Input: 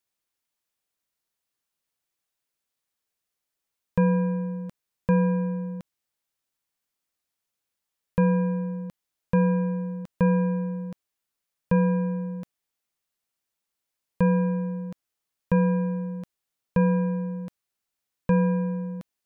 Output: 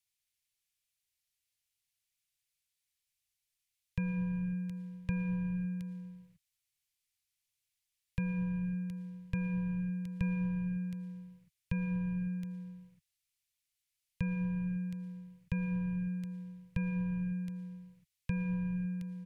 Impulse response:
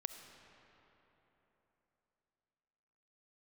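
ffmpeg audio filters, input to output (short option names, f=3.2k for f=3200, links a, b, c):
-filter_complex "[0:a]firequalizer=gain_entry='entry(120,0);entry(230,-23);entry(1000,-19);entry(2200,0)':delay=0.05:min_phase=1,acrossover=split=330|3000[a][b][c];[b]acompressor=threshold=-49dB:ratio=2[d];[a][d][c]amix=inputs=3:normalize=0[e];[1:a]atrim=start_sample=2205,afade=t=out:st=0.37:d=0.01,atrim=end_sample=16758,asetrate=25578,aresample=44100[f];[e][f]afir=irnorm=-1:irlink=0"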